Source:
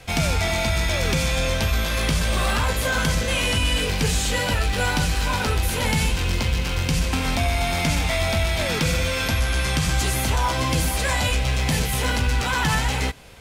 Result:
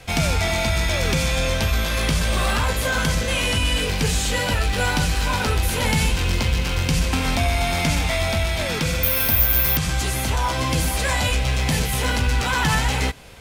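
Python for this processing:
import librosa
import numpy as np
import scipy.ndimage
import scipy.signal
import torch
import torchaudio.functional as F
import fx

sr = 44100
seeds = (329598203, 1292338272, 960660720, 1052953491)

y = fx.resample_bad(x, sr, factor=3, down='filtered', up='zero_stuff', at=(9.03, 9.77))
y = fx.rider(y, sr, range_db=3, speed_s=2.0)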